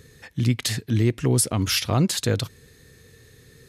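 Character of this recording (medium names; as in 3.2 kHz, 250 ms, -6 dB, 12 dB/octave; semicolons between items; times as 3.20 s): noise floor -53 dBFS; spectral tilt -4.5 dB/octave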